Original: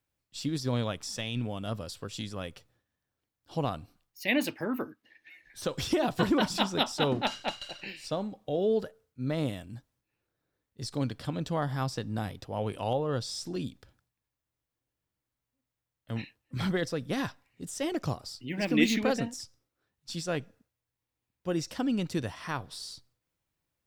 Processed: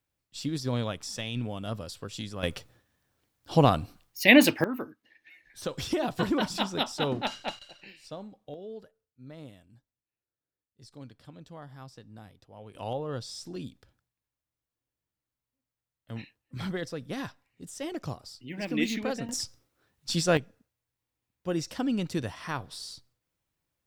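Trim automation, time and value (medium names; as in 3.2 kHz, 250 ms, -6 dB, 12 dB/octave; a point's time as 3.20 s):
0 dB
from 2.43 s +10.5 dB
from 4.64 s -1.5 dB
from 7.59 s -8.5 dB
from 8.54 s -15 dB
from 12.75 s -4 dB
from 19.29 s +8.5 dB
from 20.37 s +0.5 dB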